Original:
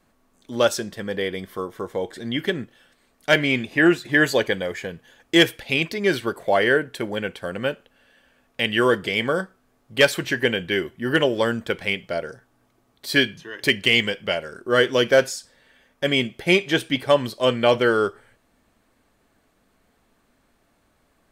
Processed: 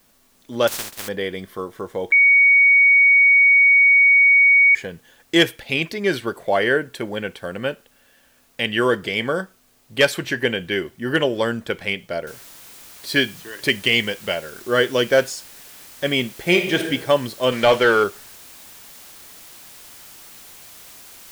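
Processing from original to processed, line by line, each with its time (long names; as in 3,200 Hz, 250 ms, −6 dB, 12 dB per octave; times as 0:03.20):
0:00.67–0:01.07: compressing power law on the bin magnitudes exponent 0.14
0:02.12–0:04.75: beep over 2,240 Hz −9.5 dBFS
0:12.27: noise floor change −60 dB −43 dB
0:16.32–0:16.84: thrown reverb, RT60 0.97 s, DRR 5 dB
0:17.52–0:18.04: mid-hump overdrive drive 14 dB, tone 3,800 Hz, clips at −5 dBFS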